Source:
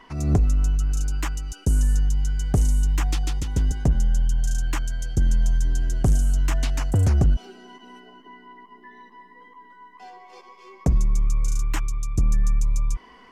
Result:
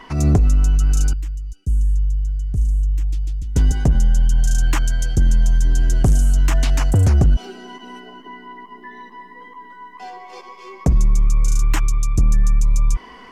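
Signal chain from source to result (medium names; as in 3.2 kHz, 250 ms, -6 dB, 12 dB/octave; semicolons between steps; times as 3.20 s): 1.13–3.56 s: amplifier tone stack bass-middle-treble 10-0-1; peak limiter -17.5 dBFS, peak gain reduction 4.5 dB; trim +8.5 dB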